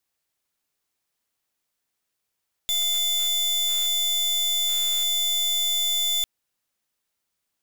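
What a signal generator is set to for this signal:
pulse wave 3,500 Hz, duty 37% −23.5 dBFS 3.55 s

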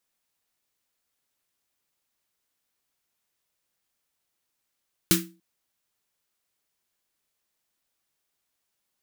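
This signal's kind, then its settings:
synth snare length 0.29 s, tones 180 Hz, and 330 Hz, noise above 1,300 Hz, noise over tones 2 dB, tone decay 0.35 s, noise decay 0.24 s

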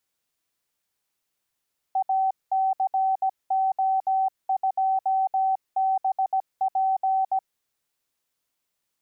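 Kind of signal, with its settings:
Morse code "ACO2BP" 17 words per minute 766 Hz −19.5 dBFS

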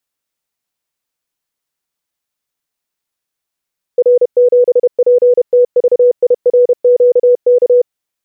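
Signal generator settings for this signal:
Morse code "R7PTVIRQK" 31 words per minute 491 Hz −4.5 dBFS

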